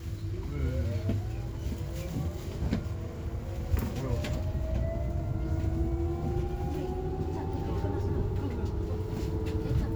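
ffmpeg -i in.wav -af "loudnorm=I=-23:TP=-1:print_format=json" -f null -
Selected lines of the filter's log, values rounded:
"input_i" : "-33.1",
"input_tp" : "-15.5",
"input_lra" : "1.8",
"input_thresh" : "-43.1",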